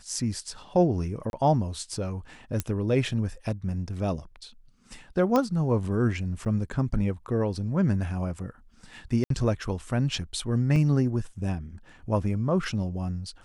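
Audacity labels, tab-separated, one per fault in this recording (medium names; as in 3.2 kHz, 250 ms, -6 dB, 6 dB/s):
1.300000	1.330000	dropout 31 ms
2.600000	2.600000	pop -13 dBFS
5.360000	5.360000	pop -12 dBFS
6.450000	6.460000	dropout 9.2 ms
9.240000	9.300000	dropout 63 ms
10.760000	10.760000	dropout 2.3 ms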